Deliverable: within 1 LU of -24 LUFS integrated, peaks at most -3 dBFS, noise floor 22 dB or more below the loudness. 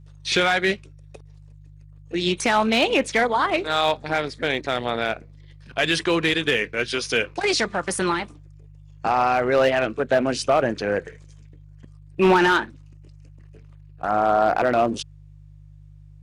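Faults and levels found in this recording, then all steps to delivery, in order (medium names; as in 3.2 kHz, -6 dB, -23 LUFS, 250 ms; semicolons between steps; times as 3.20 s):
clipped samples 0.2%; clipping level -10.5 dBFS; hum 50 Hz; highest harmonic 150 Hz; hum level -44 dBFS; loudness -21.5 LUFS; peak level -10.5 dBFS; loudness target -24.0 LUFS
-> clip repair -10.5 dBFS; de-hum 50 Hz, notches 3; trim -2.5 dB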